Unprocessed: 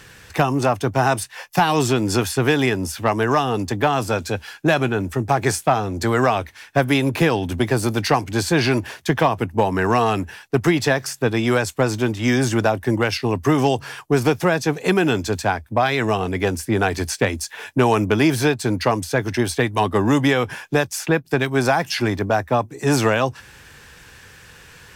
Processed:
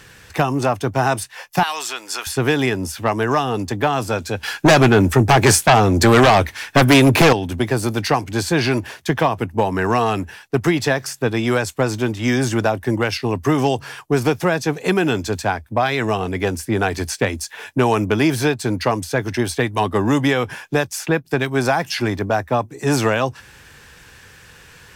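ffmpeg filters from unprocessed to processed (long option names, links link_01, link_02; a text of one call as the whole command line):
ffmpeg -i in.wav -filter_complex "[0:a]asettb=1/sr,asplit=3[link_01][link_02][link_03];[link_01]atrim=end=1.634[link_04];[link_02]atrim=start=1.63:end=2.27,asetpts=PTS-STARTPTS,afade=type=in:duration=0.004:curve=qsin,afade=type=out:start_time=0.636:duration=0.004:curve=qsin,highpass=1100[link_05];[link_03]atrim=start=2.266[link_06];[link_04][link_05]acrossfade=duration=0.004:curve1=hsin:curve2=qsin[link_07];[link_07][link_06]acrossfade=duration=0.004:curve1=qsin:curve2=hsin,asettb=1/sr,asplit=3[link_08][link_09][link_10];[link_08]atrim=end=4.434[link_11];[link_09]atrim=start=4.43:end=7.33,asetpts=PTS-STARTPTS,afade=type=in:duration=0.004:curve=qsin,afade=type=out:start_time=2.896:duration=0.004:curve=qsin,aeval=exprs='0.473*sin(PI/2*2.24*val(0)/0.473)':channel_layout=same[link_12];[link_10]atrim=start=7.326[link_13];[link_11][link_12]acrossfade=duration=0.004:curve1=hsin:curve2=qsin[link_14];[link_14][link_13]acrossfade=duration=0.004:curve1=qsin:curve2=hsin" out.wav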